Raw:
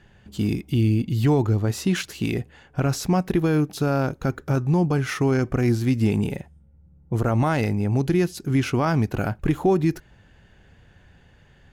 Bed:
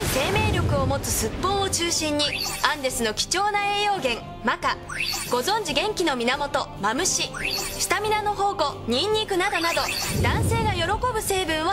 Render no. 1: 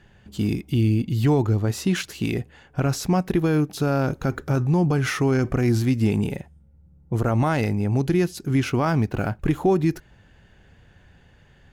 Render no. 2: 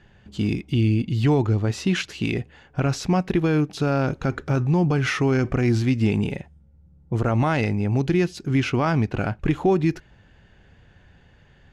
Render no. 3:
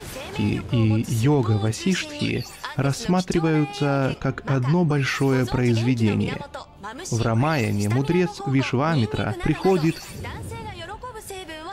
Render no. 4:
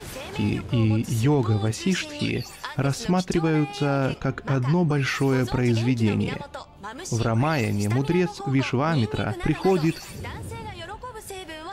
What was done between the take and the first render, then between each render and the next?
3.74–5.9 transient shaper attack 0 dB, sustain +6 dB; 8.69–9.39 median filter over 5 samples
LPF 6600 Hz 12 dB/oct; dynamic EQ 2600 Hz, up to +4 dB, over -47 dBFS, Q 1.5
add bed -11.5 dB
gain -1.5 dB

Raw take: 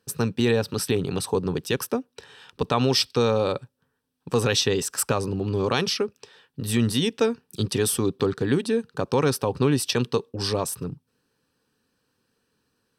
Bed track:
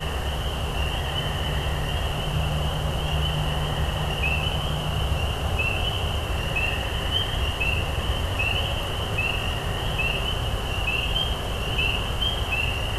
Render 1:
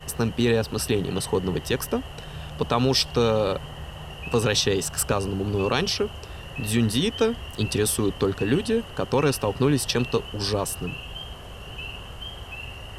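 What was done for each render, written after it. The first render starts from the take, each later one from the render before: add bed track -12 dB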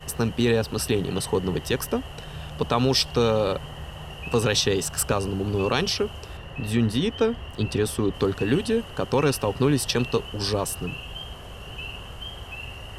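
6.37–8.14 high shelf 4200 Hz -10.5 dB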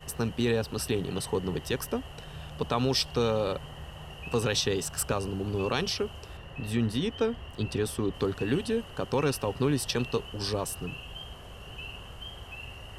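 gain -5.5 dB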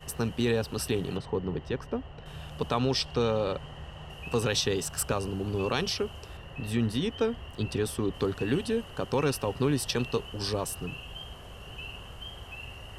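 1.17–2.26 tape spacing loss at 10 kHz 26 dB; 2.78–4.1 air absorption 54 m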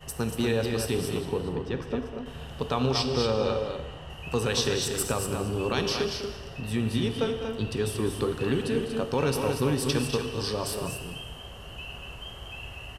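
on a send: loudspeakers at several distances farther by 69 m -11 dB, 81 m -6 dB; on the sum: non-linear reverb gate 0.49 s falling, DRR 7.5 dB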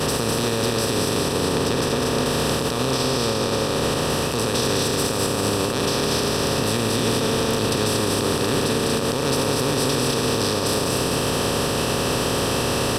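per-bin compression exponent 0.2; limiter -11.5 dBFS, peak gain reduction 8.5 dB

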